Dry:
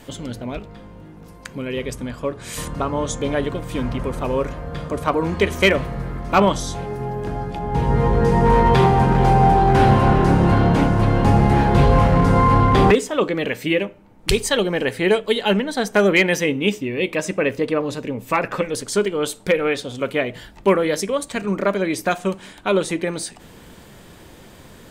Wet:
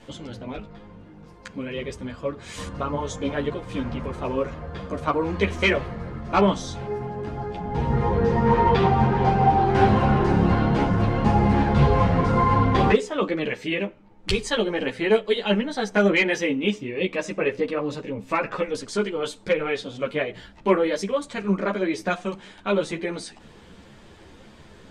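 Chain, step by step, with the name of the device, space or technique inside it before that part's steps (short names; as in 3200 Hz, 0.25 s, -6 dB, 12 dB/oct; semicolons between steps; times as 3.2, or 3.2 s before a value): 8.14–9.65 LPF 6400 Hz 12 dB/oct; string-machine ensemble chorus (ensemble effect; LPF 5900 Hz 12 dB/oct); gain -1 dB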